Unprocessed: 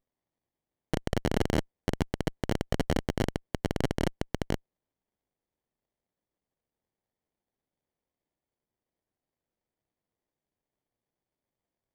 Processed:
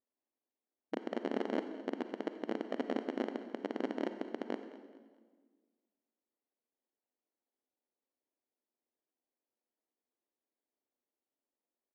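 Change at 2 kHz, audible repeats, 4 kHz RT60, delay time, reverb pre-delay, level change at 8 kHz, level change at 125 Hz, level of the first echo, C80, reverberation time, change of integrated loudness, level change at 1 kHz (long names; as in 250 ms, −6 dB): −8.5 dB, 2, 1.3 s, 214 ms, 37 ms, below −20 dB, below −25 dB, −17.5 dB, 10.0 dB, 1.5 s, −7.0 dB, −6.0 dB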